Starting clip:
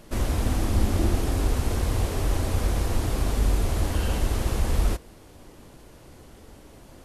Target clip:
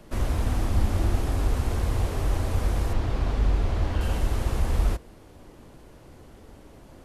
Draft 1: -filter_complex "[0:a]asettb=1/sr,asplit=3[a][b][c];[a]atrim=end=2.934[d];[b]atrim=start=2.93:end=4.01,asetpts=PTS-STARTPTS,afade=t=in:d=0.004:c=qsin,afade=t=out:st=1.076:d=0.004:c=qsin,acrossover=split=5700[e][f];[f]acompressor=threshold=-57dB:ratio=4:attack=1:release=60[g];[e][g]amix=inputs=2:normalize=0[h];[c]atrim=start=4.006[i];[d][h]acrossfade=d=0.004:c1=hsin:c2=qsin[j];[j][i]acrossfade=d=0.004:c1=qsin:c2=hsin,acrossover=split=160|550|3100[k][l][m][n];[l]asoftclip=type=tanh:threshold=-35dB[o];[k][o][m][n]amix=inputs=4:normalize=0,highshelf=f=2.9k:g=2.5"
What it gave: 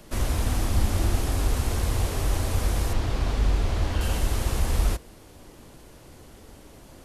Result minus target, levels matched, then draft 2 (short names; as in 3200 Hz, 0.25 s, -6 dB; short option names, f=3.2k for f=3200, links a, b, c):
8000 Hz band +7.5 dB
-filter_complex "[0:a]asettb=1/sr,asplit=3[a][b][c];[a]atrim=end=2.934[d];[b]atrim=start=2.93:end=4.01,asetpts=PTS-STARTPTS,afade=t=in:d=0.004:c=qsin,afade=t=out:st=1.076:d=0.004:c=qsin,acrossover=split=5700[e][f];[f]acompressor=threshold=-57dB:ratio=4:attack=1:release=60[g];[e][g]amix=inputs=2:normalize=0[h];[c]atrim=start=4.006[i];[d][h]acrossfade=d=0.004:c1=hsin:c2=qsin[j];[j][i]acrossfade=d=0.004:c1=qsin:c2=hsin,acrossover=split=160|550|3100[k][l][m][n];[l]asoftclip=type=tanh:threshold=-35dB[o];[k][o][m][n]amix=inputs=4:normalize=0,highshelf=f=2.9k:g=-6.5"